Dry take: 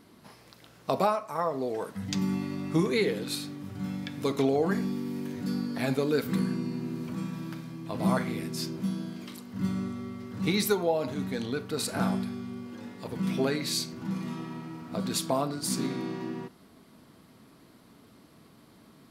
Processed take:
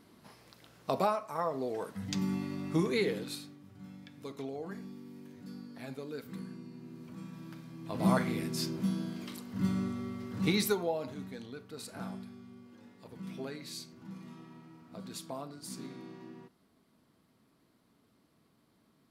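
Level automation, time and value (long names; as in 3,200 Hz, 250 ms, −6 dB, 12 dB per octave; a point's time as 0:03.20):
0:03.17 −4 dB
0:03.62 −15 dB
0:06.72 −15 dB
0:07.70 −7.5 dB
0:08.07 −1 dB
0:10.44 −1 dB
0:11.50 −13.5 dB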